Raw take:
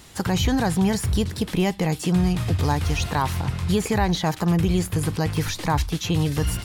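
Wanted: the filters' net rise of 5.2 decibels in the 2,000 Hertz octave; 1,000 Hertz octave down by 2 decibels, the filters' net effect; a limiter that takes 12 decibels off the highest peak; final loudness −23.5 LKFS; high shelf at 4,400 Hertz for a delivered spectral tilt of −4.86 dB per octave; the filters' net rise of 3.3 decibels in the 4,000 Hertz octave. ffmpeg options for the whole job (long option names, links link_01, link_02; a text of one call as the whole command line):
ffmpeg -i in.wav -af "equalizer=frequency=1000:width_type=o:gain=-4,equalizer=frequency=2000:width_type=o:gain=7.5,equalizer=frequency=4000:width_type=o:gain=3.5,highshelf=frequency=4400:gain=-3.5,volume=6dB,alimiter=limit=-15dB:level=0:latency=1" out.wav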